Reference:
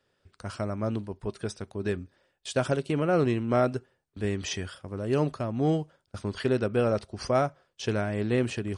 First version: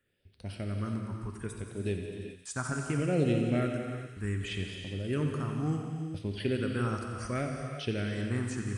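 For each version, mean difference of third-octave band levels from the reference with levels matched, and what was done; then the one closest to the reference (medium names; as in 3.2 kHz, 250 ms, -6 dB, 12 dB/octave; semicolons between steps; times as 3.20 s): 7.0 dB: treble shelf 5.3 kHz +5.5 dB; phase shifter stages 4, 0.68 Hz, lowest notch 510–1300 Hz; on a send: thinning echo 89 ms, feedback 84%, high-pass 820 Hz, level -12 dB; on the sum: gated-style reverb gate 430 ms flat, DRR 3.5 dB; trim -3 dB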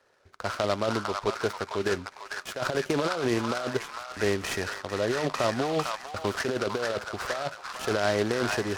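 11.0 dB: three-band isolator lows -15 dB, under 440 Hz, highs -23 dB, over 2.4 kHz; compressor with a negative ratio -35 dBFS, ratio -1; repeats whose band climbs or falls 452 ms, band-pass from 1.2 kHz, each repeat 0.7 oct, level 0 dB; delay time shaken by noise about 3 kHz, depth 0.052 ms; trim +8 dB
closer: first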